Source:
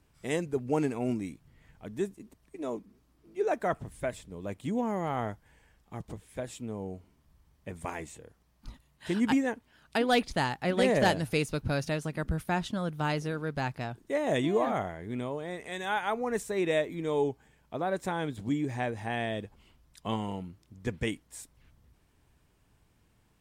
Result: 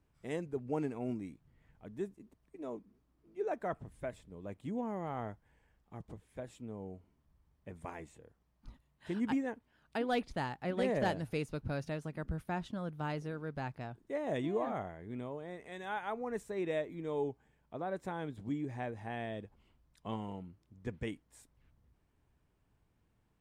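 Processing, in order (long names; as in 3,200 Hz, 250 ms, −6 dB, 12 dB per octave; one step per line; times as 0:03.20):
high-shelf EQ 2,700 Hz −9 dB
level −7 dB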